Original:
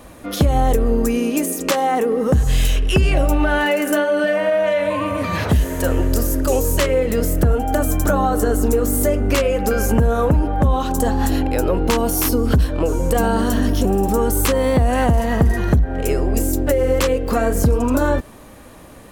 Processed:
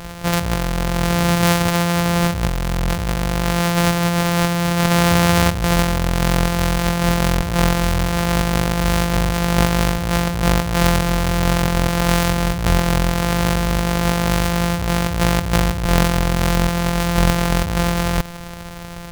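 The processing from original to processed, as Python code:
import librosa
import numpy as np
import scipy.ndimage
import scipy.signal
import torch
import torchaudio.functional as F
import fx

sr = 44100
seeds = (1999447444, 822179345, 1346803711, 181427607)

y = np.r_[np.sort(x[:len(x) // 256 * 256].reshape(-1, 256), axis=1).ravel(), x[len(x) // 256 * 256:]]
y = fx.over_compress(y, sr, threshold_db=-22.0, ratio=-1.0)
y = fx.peak_eq(y, sr, hz=320.0, db=-8.5, octaves=0.56)
y = y * librosa.db_to_amplitude(5.0)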